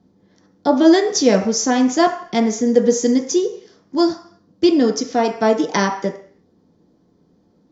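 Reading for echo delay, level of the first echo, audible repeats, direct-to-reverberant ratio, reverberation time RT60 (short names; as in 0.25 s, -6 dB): none, none, none, 1.5 dB, 0.55 s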